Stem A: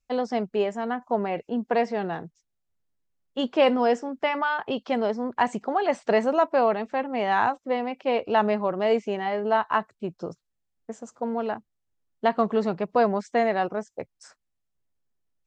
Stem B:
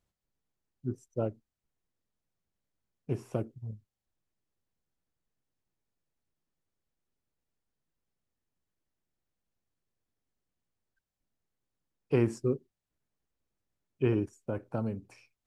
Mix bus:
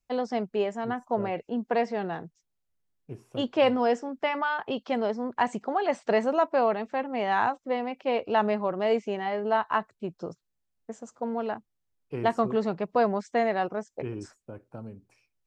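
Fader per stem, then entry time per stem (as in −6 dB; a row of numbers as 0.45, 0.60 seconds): −2.5, −8.0 decibels; 0.00, 0.00 seconds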